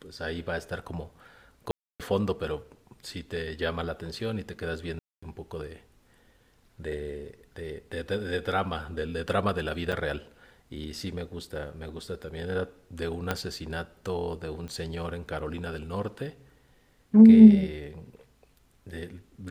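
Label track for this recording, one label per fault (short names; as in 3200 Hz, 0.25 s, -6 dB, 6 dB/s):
1.710000	2.000000	gap 0.287 s
4.990000	5.220000	gap 0.235 s
9.920000	9.930000	gap 6 ms
13.310000	13.310000	pop -12 dBFS
14.680000	14.680000	pop -28 dBFS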